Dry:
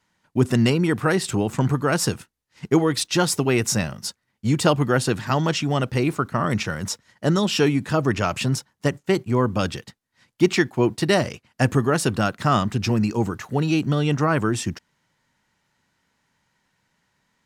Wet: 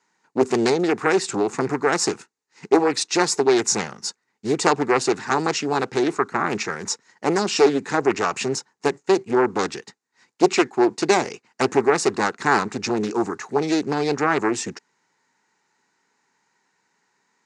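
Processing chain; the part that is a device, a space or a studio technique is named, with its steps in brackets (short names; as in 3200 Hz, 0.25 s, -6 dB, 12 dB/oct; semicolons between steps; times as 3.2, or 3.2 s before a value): full-range speaker at full volume (Doppler distortion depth 0.99 ms; speaker cabinet 290–7900 Hz, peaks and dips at 410 Hz +7 dB, 590 Hz -9 dB, 840 Hz +4 dB, 3200 Hz -9 dB, 6900 Hz +5 dB); gain +2 dB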